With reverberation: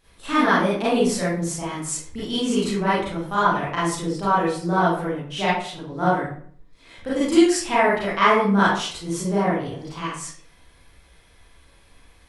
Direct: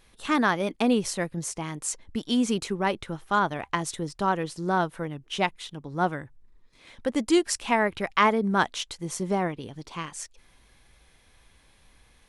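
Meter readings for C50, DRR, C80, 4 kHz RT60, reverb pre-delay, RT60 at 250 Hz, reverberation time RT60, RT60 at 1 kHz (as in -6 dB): 0.0 dB, -10.0 dB, 4.5 dB, 0.35 s, 31 ms, 0.65 s, 0.55 s, 0.50 s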